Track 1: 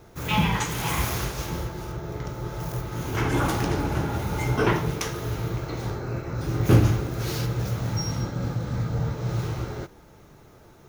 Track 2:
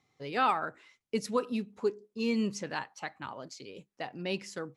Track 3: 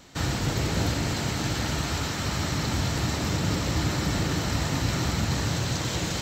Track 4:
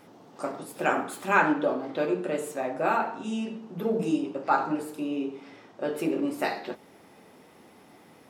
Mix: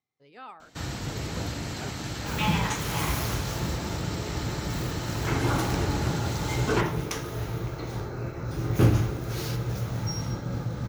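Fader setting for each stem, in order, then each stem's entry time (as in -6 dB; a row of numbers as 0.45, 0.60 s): -3.0, -17.0, -6.5, -19.5 dB; 2.10, 0.00, 0.60, 0.95 s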